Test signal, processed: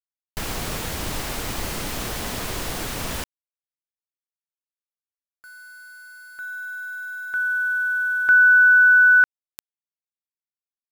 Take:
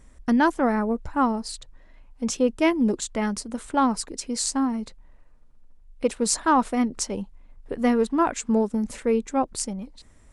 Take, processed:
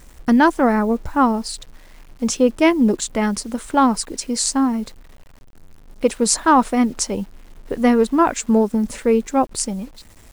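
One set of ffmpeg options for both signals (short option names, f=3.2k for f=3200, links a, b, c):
-af "acrusher=bits=8:mix=0:aa=0.000001,volume=6dB"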